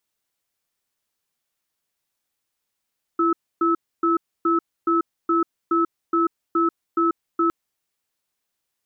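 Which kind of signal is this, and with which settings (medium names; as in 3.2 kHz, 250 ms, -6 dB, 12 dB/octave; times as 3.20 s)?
cadence 335 Hz, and 1.3 kHz, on 0.14 s, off 0.28 s, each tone -19 dBFS 4.31 s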